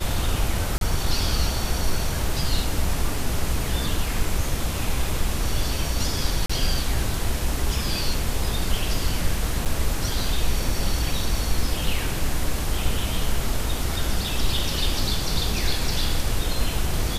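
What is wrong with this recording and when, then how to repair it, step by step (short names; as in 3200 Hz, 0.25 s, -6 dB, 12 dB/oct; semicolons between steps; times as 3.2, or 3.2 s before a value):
0.78–0.81 gap 32 ms
6.46–6.5 gap 35 ms
9.65–9.66 gap 7.2 ms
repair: interpolate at 0.78, 32 ms; interpolate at 6.46, 35 ms; interpolate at 9.65, 7.2 ms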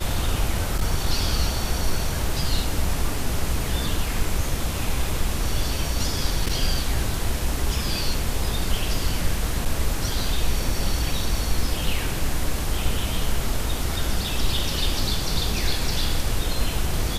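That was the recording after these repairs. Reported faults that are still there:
none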